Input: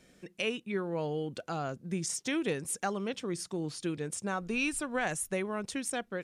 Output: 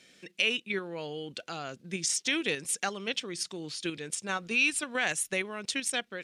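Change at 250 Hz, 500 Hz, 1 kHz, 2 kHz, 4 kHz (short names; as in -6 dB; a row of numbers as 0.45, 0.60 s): -3.0, -2.0, -1.0, +6.5, +9.5 dB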